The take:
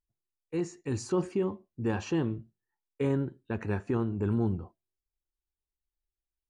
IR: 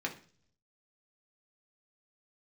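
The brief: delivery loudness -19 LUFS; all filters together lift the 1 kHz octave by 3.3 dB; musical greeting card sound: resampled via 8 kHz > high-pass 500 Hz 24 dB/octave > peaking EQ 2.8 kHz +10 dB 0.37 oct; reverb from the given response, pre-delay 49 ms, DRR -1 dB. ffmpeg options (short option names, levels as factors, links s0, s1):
-filter_complex "[0:a]equalizer=f=1000:t=o:g=4,asplit=2[s0][s1];[1:a]atrim=start_sample=2205,adelay=49[s2];[s1][s2]afir=irnorm=-1:irlink=0,volume=0.708[s3];[s0][s3]amix=inputs=2:normalize=0,aresample=8000,aresample=44100,highpass=f=500:w=0.5412,highpass=f=500:w=1.3066,equalizer=f=2800:t=o:w=0.37:g=10,volume=7.5"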